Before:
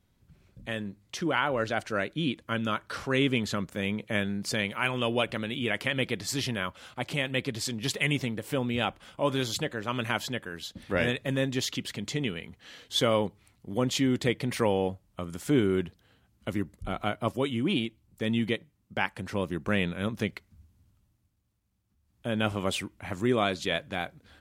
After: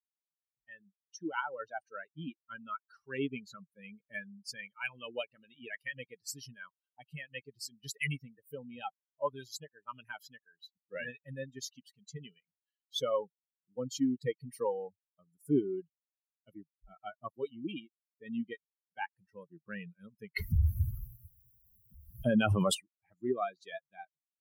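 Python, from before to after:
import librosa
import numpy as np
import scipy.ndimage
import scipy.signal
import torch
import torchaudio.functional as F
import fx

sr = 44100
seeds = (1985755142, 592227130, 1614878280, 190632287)

y = fx.env_flatten(x, sr, amount_pct=100, at=(20.36, 22.73), fade=0.02)
y = fx.bin_expand(y, sr, power=3.0)
y = fx.dynamic_eq(y, sr, hz=3400.0, q=1.2, threshold_db=-51.0, ratio=4.0, max_db=-5)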